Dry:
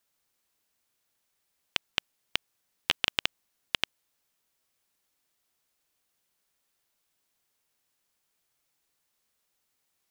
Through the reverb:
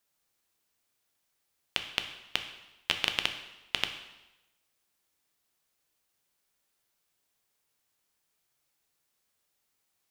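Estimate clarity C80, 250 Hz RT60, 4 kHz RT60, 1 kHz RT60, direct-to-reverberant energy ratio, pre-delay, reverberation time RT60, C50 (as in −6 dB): 11.0 dB, 0.95 s, 0.90 s, 0.95 s, 6.0 dB, 4 ms, 1.0 s, 9.0 dB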